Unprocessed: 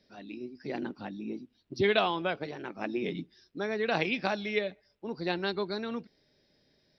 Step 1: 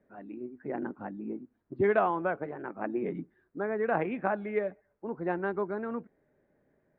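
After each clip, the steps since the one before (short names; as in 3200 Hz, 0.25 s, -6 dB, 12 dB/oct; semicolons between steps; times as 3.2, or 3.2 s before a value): inverse Chebyshev low-pass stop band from 5300 Hz, stop band 60 dB; low shelf 250 Hz -5 dB; gain +2.5 dB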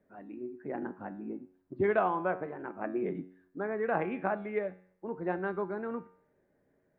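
resonator 92 Hz, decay 0.6 s, harmonics all, mix 60%; gain +4.5 dB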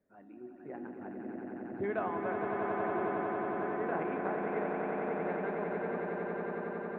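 swelling echo 91 ms, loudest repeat 8, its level -6 dB; gain -7.5 dB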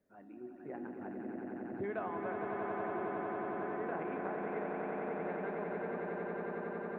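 compressor 2:1, threshold -38 dBFS, peak gain reduction 5.5 dB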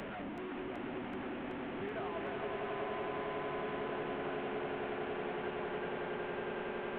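delta modulation 16 kbps, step -35 dBFS; echo with dull and thin repeats by turns 0.189 s, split 840 Hz, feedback 87%, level -3 dB; three-band squash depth 40%; gain -4.5 dB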